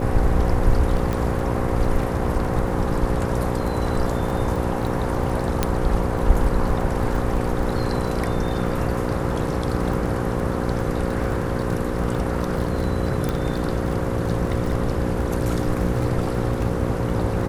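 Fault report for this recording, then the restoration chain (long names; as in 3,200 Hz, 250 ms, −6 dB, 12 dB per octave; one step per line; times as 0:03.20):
mains buzz 60 Hz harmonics 9 −26 dBFS
surface crackle 20 per second −27 dBFS
0:01.13: click −13 dBFS
0:05.63: click −5 dBFS
0:13.29: click −11 dBFS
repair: click removal
hum removal 60 Hz, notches 9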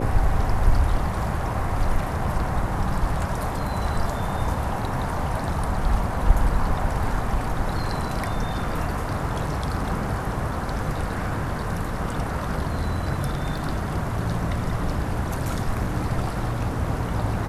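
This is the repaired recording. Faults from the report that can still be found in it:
none of them is left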